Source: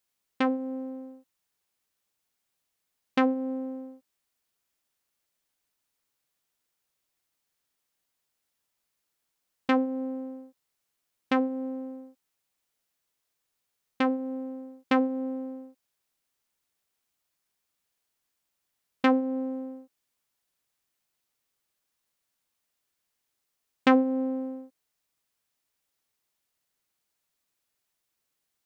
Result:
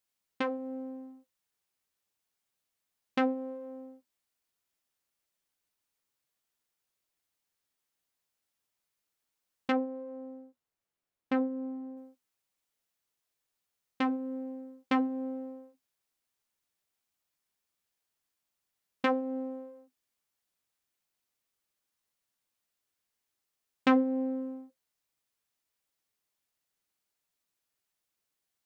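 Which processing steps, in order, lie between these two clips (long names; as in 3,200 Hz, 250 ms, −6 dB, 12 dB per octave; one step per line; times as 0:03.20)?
flanger 0.31 Hz, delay 9.1 ms, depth 2 ms, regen −52%
0:09.72–0:11.97: high-shelf EQ 2,200 Hz −9.5 dB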